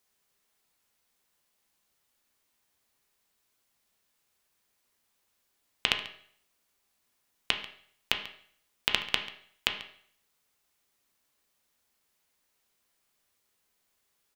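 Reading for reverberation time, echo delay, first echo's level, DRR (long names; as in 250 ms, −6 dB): 0.60 s, 140 ms, −18.0 dB, 4.0 dB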